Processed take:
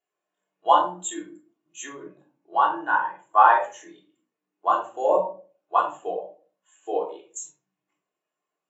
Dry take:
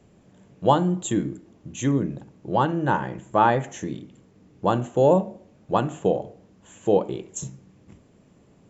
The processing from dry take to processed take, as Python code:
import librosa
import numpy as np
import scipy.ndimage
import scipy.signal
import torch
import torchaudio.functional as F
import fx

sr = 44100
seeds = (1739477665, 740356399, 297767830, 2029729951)

y = scipy.signal.sosfilt(scipy.signal.butter(2, 950.0, 'highpass', fs=sr, output='sos'), x)
y = fx.room_shoebox(y, sr, seeds[0], volume_m3=640.0, walls='furnished', distance_m=3.3)
y = fx.spectral_expand(y, sr, expansion=1.5)
y = y * librosa.db_to_amplitude(3.5)